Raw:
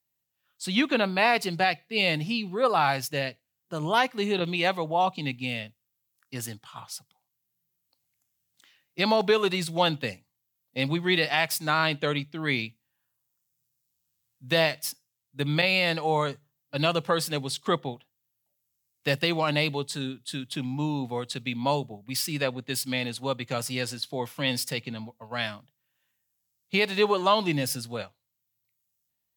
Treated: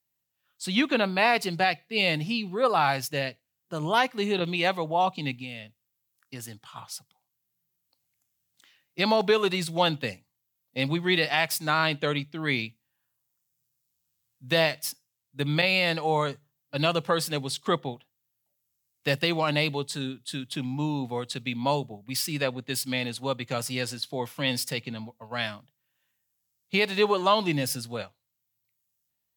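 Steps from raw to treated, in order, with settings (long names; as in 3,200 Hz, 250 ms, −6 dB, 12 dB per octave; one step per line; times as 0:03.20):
0:05.37–0:06.61: downward compressor 2.5 to 1, threshold −38 dBFS, peak gain reduction 8 dB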